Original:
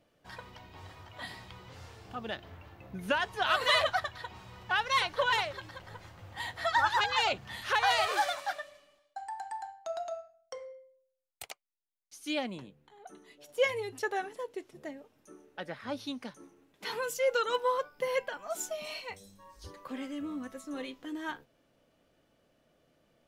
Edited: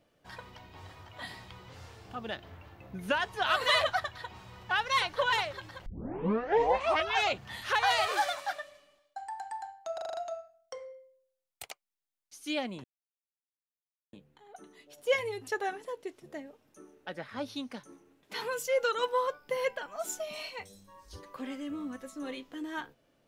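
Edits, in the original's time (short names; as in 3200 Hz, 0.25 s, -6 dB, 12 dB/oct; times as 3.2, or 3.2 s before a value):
5.86 tape start 1.48 s
9.94 stutter 0.04 s, 6 plays
12.64 insert silence 1.29 s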